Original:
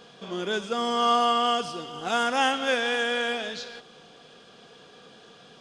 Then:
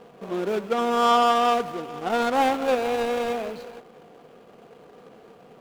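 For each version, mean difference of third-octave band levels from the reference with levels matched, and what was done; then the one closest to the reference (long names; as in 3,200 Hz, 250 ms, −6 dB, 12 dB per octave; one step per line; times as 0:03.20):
5.0 dB: running median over 25 samples
bass and treble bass −5 dB, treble −4 dB
level +6 dB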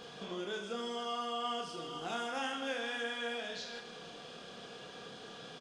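7.0 dB: downward compressor 2.5 to 1, threshold −45 dBFS, peak gain reduction 17 dB
reverse bouncing-ball delay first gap 30 ms, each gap 1.6×, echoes 5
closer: first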